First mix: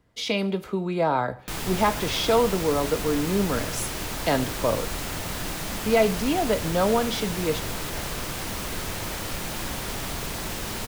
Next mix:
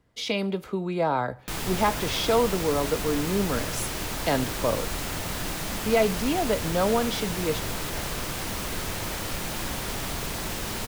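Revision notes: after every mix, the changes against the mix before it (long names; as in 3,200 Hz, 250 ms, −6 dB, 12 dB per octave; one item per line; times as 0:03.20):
speech: send −7.0 dB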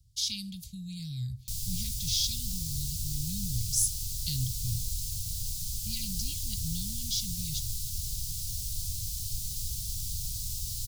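speech +8.0 dB
master: add inverse Chebyshev band-stop filter 400–1,400 Hz, stop band 70 dB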